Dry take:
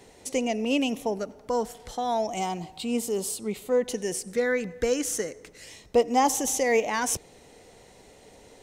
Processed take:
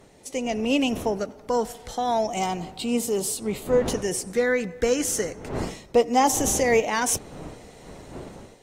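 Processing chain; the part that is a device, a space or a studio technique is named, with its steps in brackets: smartphone video outdoors (wind noise 430 Hz -42 dBFS; level rider gain up to 7.5 dB; trim -4.5 dB; AAC 48 kbps 44.1 kHz)

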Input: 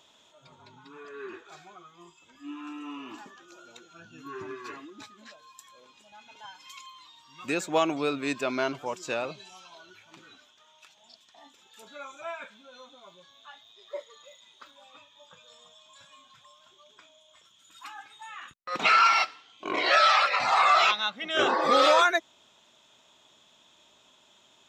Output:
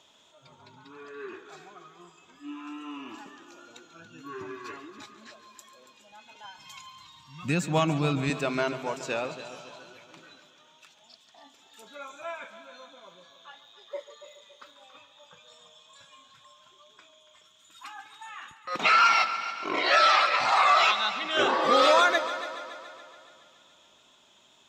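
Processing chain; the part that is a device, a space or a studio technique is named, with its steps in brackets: 6.58–8.30 s: resonant low shelf 240 Hz +14 dB, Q 1.5; multi-head tape echo (multi-head delay 141 ms, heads first and second, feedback 56%, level -15.5 dB; wow and flutter 21 cents)

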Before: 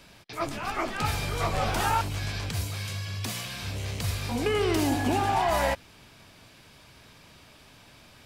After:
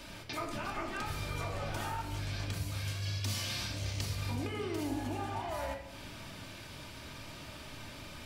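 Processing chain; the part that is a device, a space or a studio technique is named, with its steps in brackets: serial compression, peaks first (compression, threshold -35 dBFS, peak gain reduction 13.5 dB; compression 2:1, threshold -45 dBFS, peak gain reduction 7 dB); 3.02–4.15 s: peaking EQ 5.2 kHz +6 dB 0.97 oct; simulated room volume 2400 m³, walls furnished, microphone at 2.6 m; trim +3 dB

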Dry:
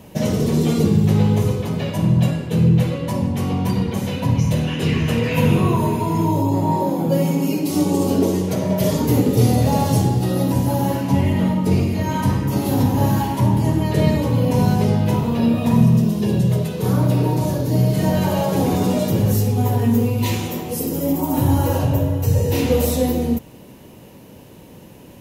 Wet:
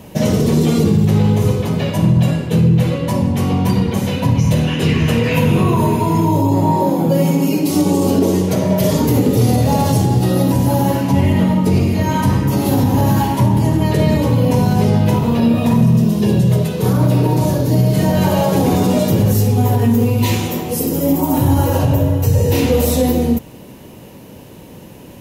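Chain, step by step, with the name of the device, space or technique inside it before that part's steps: clipper into limiter (hard clipper -6 dBFS, distortion -38 dB; peak limiter -10 dBFS, peak gain reduction 4 dB); trim +5 dB

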